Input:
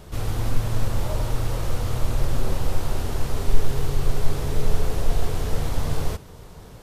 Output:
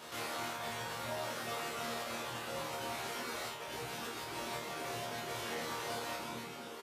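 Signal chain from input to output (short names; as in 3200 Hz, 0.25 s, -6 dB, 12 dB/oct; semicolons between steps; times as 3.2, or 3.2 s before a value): tilt shelf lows -8.5 dB, about 690 Hz; soft clip -13.5 dBFS, distortion -22 dB; frequency-shifting echo 0.129 s, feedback 61%, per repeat -67 Hz, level -7.5 dB; compressor 6:1, threshold -27 dBFS, peak gain reduction 10 dB; HPF 230 Hz 12 dB/oct; high shelf 4300 Hz -9 dB; spring tank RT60 2.3 s, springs 44/48 ms, chirp 75 ms, DRR 3 dB; reverb removal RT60 1.2 s; limiter -31.5 dBFS, peak gain reduction 6 dB; resonator bank D#2 fifth, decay 0.48 s; gain +13.5 dB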